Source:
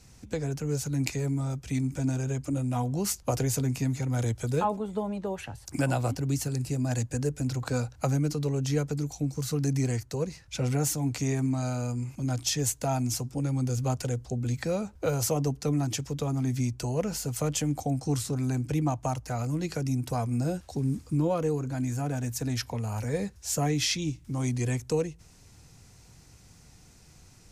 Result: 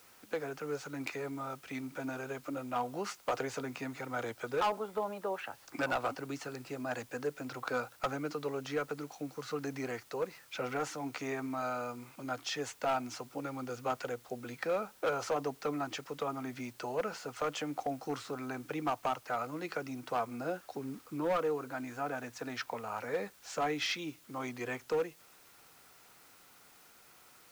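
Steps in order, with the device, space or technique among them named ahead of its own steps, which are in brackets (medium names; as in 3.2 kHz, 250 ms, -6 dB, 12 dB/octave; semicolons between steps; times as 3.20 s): drive-through speaker (band-pass 460–2900 Hz; peaking EQ 1.3 kHz +8 dB 0.44 oct; hard clipper -26.5 dBFS, distortion -13 dB; white noise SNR 24 dB)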